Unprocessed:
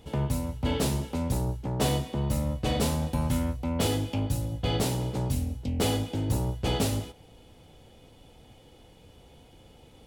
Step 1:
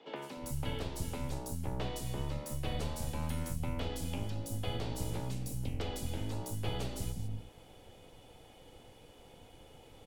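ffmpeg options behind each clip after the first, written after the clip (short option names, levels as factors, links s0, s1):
-filter_complex "[0:a]acrossover=split=140|1500[s0][s1][s2];[s0]acompressor=threshold=0.0282:ratio=4[s3];[s1]acompressor=threshold=0.01:ratio=4[s4];[s2]acompressor=threshold=0.00631:ratio=4[s5];[s3][s4][s5]amix=inputs=3:normalize=0,acrossover=split=240|760|6500[s6][s7][s8][s9];[s6]aeval=exprs='max(val(0),0)':c=same[s10];[s10][s7][s8][s9]amix=inputs=4:normalize=0,acrossover=split=230|4400[s11][s12][s13];[s13]adelay=160[s14];[s11]adelay=360[s15];[s15][s12][s14]amix=inputs=3:normalize=0"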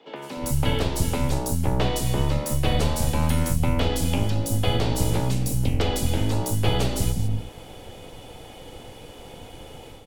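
-af "dynaudnorm=f=220:g=3:m=3.16,volume=1.68"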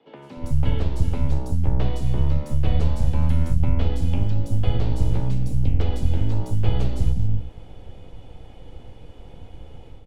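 -af "aemphasis=mode=reproduction:type=bsi,volume=0.398"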